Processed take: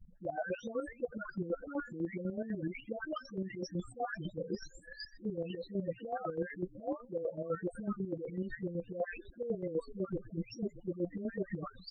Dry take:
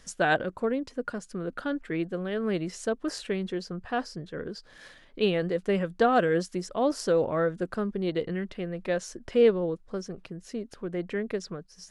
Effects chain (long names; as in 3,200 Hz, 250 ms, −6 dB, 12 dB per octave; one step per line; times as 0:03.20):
every frequency bin delayed by itself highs late, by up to 736 ms
reversed playback
downward compressor 12 to 1, threshold −41 dBFS, peak gain reduction 22.5 dB
reversed playback
echo with shifted repeats 125 ms, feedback 53%, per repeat −60 Hz, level −19 dB
spectral peaks only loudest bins 8
square-wave tremolo 8 Hz, depth 60%, duty 40%
level +9.5 dB